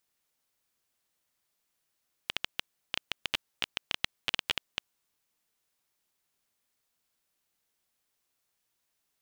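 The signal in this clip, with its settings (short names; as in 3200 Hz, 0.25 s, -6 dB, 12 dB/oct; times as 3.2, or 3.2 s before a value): random clicks 11/s -10.5 dBFS 2.61 s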